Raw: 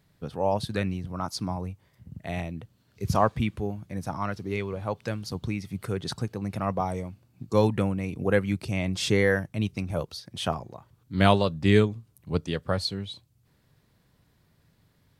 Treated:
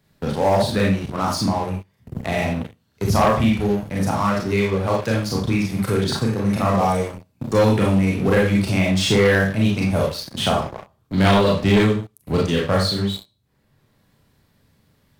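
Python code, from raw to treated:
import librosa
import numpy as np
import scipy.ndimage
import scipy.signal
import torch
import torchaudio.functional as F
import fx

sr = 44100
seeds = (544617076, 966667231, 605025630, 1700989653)

y = fx.rev_schroeder(x, sr, rt60_s=0.36, comb_ms=28, drr_db=-3.0)
y = fx.leveller(y, sr, passes=3)
y = fx.band_squash(y, sr, depth_pct=40)
y = y * 10.0 ** (-5.5 / 20.0)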